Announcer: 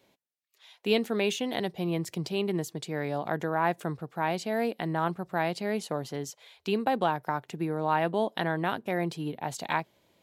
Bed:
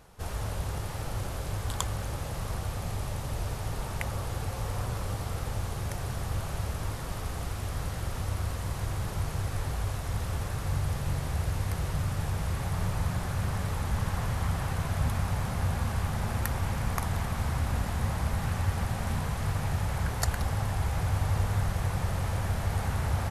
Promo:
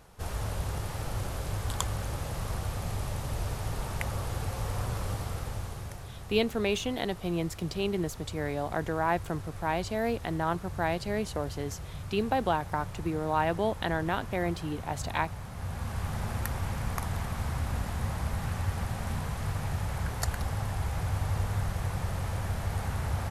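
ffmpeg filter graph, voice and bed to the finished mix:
-filter_complex "[0:a]adelay=5450,volume=0.891[s0];[1:a]volume=2.37,afade=t=out:st=5.1:d=1:silence=0.316228,afade=t=in:st=15.51:d=0.62:silence=0.421697[s1];[s0][s1]amix=inputs=2:normalize=0"

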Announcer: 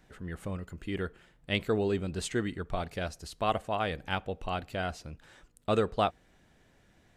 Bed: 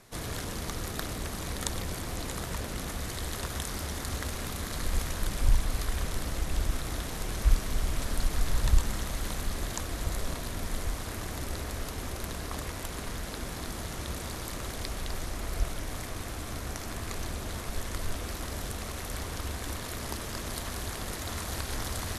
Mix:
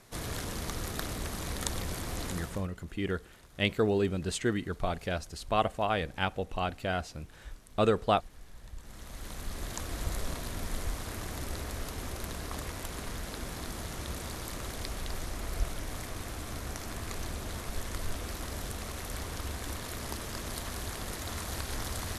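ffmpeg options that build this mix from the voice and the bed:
-filter_complex "[0:a]adelay=2100,volume=1.19[s0];[1:a]volume=10,afade=t=out:st=2.25:d=0.43:silence=0.0794328,afade=t=in:st=8.77:d=1.2:silence=0.0891251[s1];[s0][s1]amix=inputs=2:normalize=0"

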